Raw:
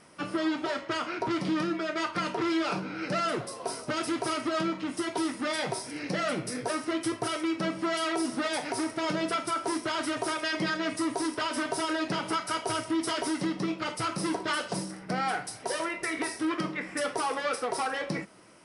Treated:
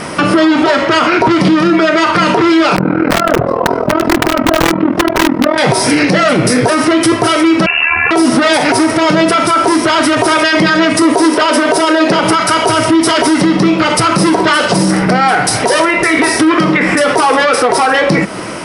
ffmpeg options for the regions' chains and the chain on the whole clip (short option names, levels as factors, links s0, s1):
-filter_complex "[0:a]asettb=1/sr,asplit=3[s0][s1][s2];[s0]atrim=end=2.764[s3];[s1]atrim=start=2.76:end=5.58,asetpts=PTS-STARTPTS,afade=t=in:d=0.004:c=qsin,afade=t=out:st=2.816:d=0.004:c=qsin,lowpass=1100,aeval=exprs='(mod(16.8*val(0)+1,2)-1)/16.8':c=same,tremolo=f=41:d=0.889[s4];[s2]atrim=start=5.576[s5];[s3][s4]acrossfade=d=0.004:c1=hsin:c2=qsin[s6];[s6][s5]acrossfade=d=0.004:c1=qsin:c2=hsin,asettb=1/sr,asplit=3[s7][s8][s9];[s7]atrim=end=7.664[s10];[s8]atrim=start=7.66:end=8.11,asetpts=PTS-STARTPTS,afade=t=in:d=0.004:c=qsin,afade=t=out:st=0.446:d=0.004:c=qsin,lowpass=f=2600:t=q:w=0.5098,lowpass=f=2600:t=q:w=0.6013,lowpass=f=2600:t=q:w=0.9,lowpass=f=2600:t=q:w=2.563,afreqshift=-3000,acompressor=threshold=0.0251:ratio=2:attack=3.2:release=140:knee=1:detection=peak,tremolo=f=76:d=0.667[s11];[s9]atrim=start=8.106[s12];[s10][s11]acrossfade=d=0.004:c1=hsin:c2=qsin[s13];[s13][s12]acrossfade=d=0.004:c1=qsin:c2=hsin,asettb=1/sr,asplit=3[s14][s15][s16];[s14]atrim=end=11.024[s17];[s15]atrim=start=11.02:end=12.24,asetpts=PTS-STARTPTS,afade=t=in:d=0.004:c=qsin,afade=t=out:st=1.216:d=0.004:c=qsin,highpass=180,equalizer=f=500:w=1.9:g=6[s18];[s16]atrim=start=12.236[s19];[s17][s18]acrossfade=d=0.004:c1=hsin:c2=qsin[s20];[s20][s19]acrossfade=d=0.004:c1=qsin:c2=hsin,highshelf=f=5200:g=-6,acompressor=threshold=0.0112:ratio=2,alimiter=level_in=56.2:limit=0.891:release=50:level=0:latency=1,volume=0.891"